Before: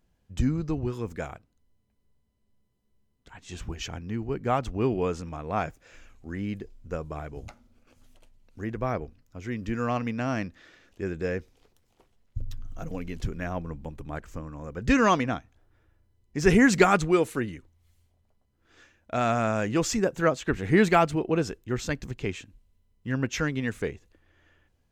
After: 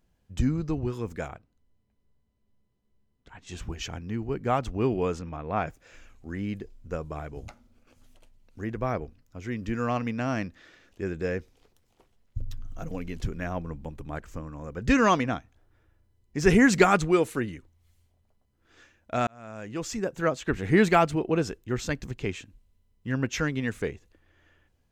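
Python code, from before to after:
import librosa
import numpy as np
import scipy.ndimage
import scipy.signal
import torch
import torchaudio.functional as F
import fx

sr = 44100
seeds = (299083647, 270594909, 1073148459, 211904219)

y = fx.lowpass(x, sr, hz=3700.0, slope=6, at=(1.28, 3.47))
y = fx.lowpass(y, sr, hz=3600.0, slope=12, at=(5.19, 5.67))
y = fx.edit(y, sr, fx.fade_in_span(start_s=19.27, length_s=1.33), tone=tone)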